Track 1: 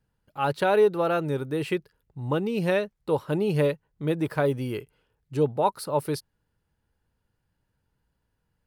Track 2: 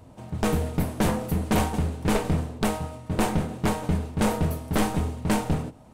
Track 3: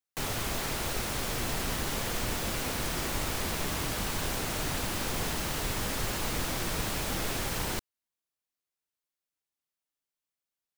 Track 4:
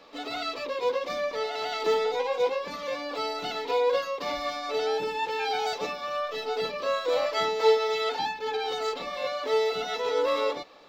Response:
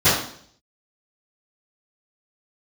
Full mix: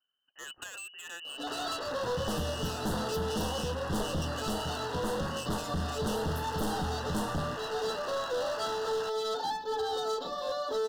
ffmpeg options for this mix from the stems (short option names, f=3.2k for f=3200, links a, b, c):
-filter_complex "[0:a]volume=-3.5dB[a];[1:a]adelay=1850,volume=-0.5dB[b];[2:a]highpass=f=240:w=0.5412,highpass=f=240:w=1.3066,adelay=1300,volume=2.5dB[c];[3:a]adelay=1250,volume=-0.5dB[d];[b][d]amix=inputs=2:normalize=0,alimiter=limit=-20.5dB:level=0:latency=1:release=415,volume=0dB[e];[a][c]amix=inputs=2:normalize=0,lowpass=f=2.6k:t=q:w=0.5098,lowpass=f=2.6k:t=q:w=0.6013,lowpass=f=2.6k:t=q:w=0.9,lowpass=f=2.6k:t=q:w=2.563,afreqshift=-3100,acompressor=threshold=-28dB:ratio=4,volume=0dB[f];[e][f]amix=inputs=2:normalize=0,volume=28dB,asoftclip=hard,volume=-28dB,asuperstop=centerf=2300:order=4:qfactor=1.4"